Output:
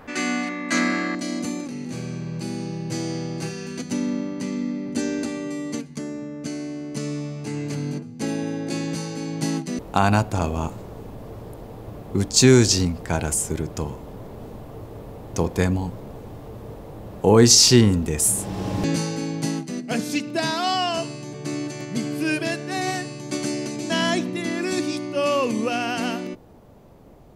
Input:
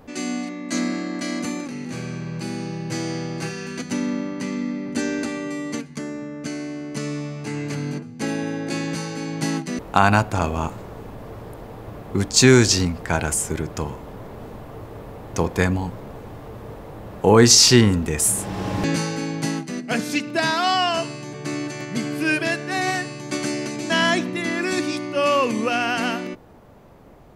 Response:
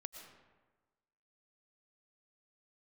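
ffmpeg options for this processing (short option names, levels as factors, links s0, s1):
-af "asetnsamples=n=441:p=0,asendcmd='1.15 equalizer g -6.5',equalizer=f=1600:t=o:w=1.8:g=10.5"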